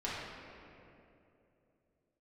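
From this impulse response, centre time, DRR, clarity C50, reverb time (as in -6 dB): 138 ms, -9.0 dB, -2.0 dB, 2.8 s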